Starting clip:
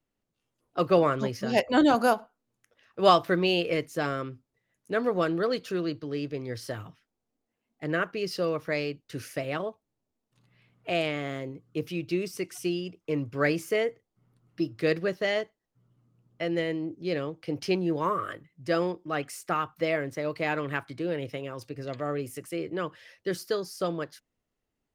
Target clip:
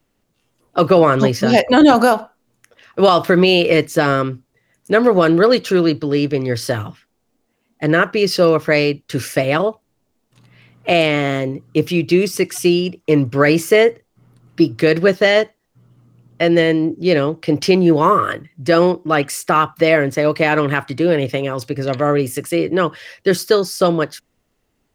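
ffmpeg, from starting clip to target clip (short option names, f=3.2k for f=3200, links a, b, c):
-af "alimiter=level_in=16.5dB:limit=-1dB:release=50:level=0:latency=1,volume=-1dB"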